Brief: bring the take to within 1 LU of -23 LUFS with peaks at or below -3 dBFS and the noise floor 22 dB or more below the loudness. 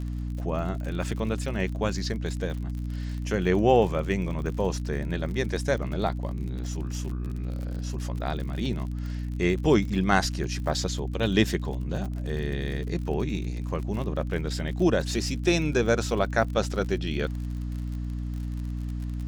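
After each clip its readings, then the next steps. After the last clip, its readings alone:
ticks 50/s; hum 60 Hz; harmonics up to 300 Hz; hum level -29 dBFS; loudness -28.0 LUFS; peak -7.5 dBFS; loudness target -23.0 LUFS
-> de-click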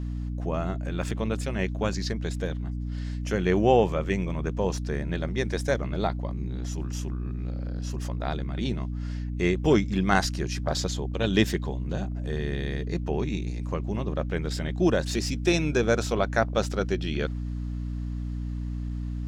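ticks 0.21/s; hum 60 Hz; harmonics up to 300 Hz; hum level -29 dBFS
-> notches 60/120/180/240/300 Hz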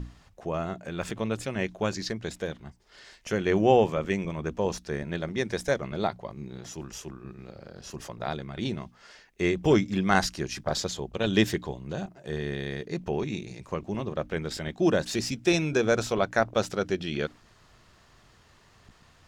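hum none; loudness -28.5 LUFS; peak -7.5 dBFS; loudness target -23.0 LUFS
-> gain +5.5 dB; limiter -3 dBFS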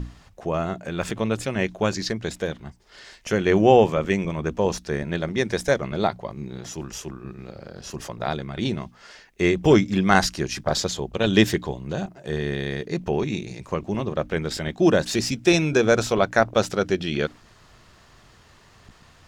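loudness -23.0 LUFS; peak -3.0 dBFS; noise floor -53 dBFS

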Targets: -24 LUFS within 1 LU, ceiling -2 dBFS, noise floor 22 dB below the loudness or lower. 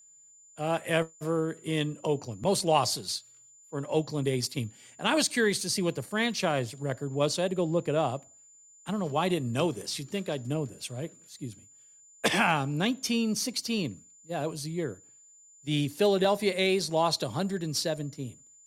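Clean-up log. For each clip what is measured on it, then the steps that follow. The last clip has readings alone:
steady tone 7100 Hz; tone level -54 dBFS; loudness -29.0 LUFS; peak -11.5 dBFS; loudness target -24.0 LUFS
-> notch 7100 Hz, Q 30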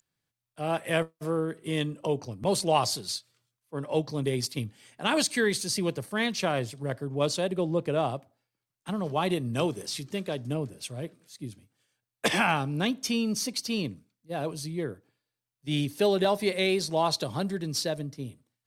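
steady tone none; loudness -29.0 LUFS; peak -11.5 dBFS; loudness target -24.0 LUFS
-> gain +5 dB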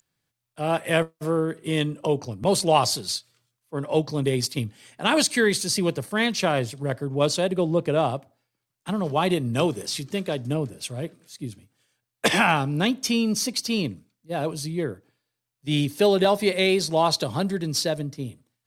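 loudness -24.0 LUFS; peak -6.5 dBFS; noise floor -83 dBFS

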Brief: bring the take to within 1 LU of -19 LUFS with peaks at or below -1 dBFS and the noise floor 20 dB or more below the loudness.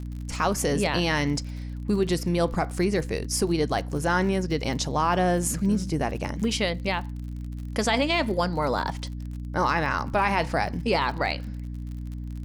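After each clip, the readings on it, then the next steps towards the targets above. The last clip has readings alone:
ticks 43/s; hum 60 Hz; harmonics up to 300 Hz; hum level -31 dBFS; loudness -26.0 LUFS; peak -10.5 dBFS; loudness target -19.0 LUFS
-> de-click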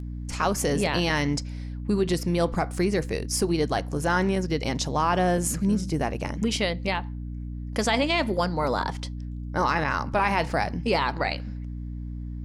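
ticks 0.16/s; hum 60 Hz; harmonics up to 300 Hz; hum level -31 dBFS
-> notches 60/120/180/240/300 Hz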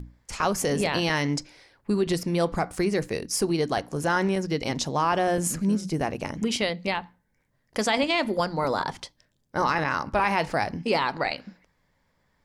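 hum none; loudness -26.0 LUFS; peak -10.5 dBFS; loudness target -19.0 LUFS
-> gain +7 dB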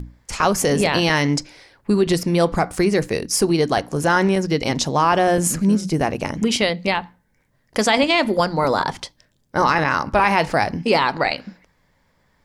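loudness -19.0 LUFS; peak -3.5 dBFS; noise floor -64 dBFS

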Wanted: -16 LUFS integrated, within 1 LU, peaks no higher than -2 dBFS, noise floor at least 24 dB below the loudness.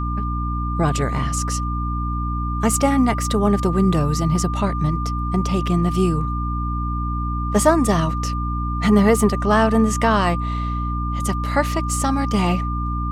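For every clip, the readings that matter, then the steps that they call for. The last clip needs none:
hum 60 Hz; harmonics up to 300 Hz; hum level -21 dBFS; steady tone 1200 Hz; tone level -27 dBFS; loudness -20.5 LUFS; peak -1.5 dBFS; loudness target -16.0 LUFS
-> de-hum 60 Hz, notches 5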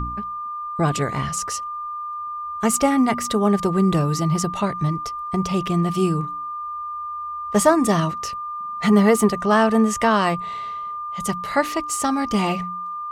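hum none; steady tone 1200 Hz; tone level -27 dBFS
-> notch 1200 Hz, Q 30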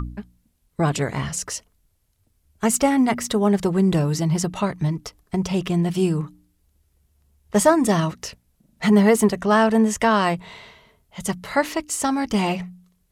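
steady tone none; loudness -21.0 LUFS; peak -3.5 dBFS; loudness target -16.0 LUFS
-> gain +5 dB; limiter -2 dBFS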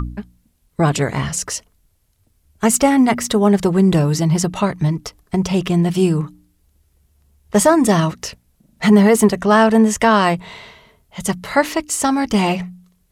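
loudness -16.5 LUFS; peak -2.0 dBFS; noise floor -62 dBFS

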